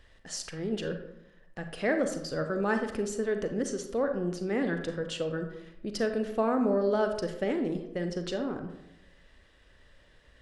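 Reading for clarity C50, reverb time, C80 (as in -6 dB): 7.5 dB, 0.85 s, 10.0 dB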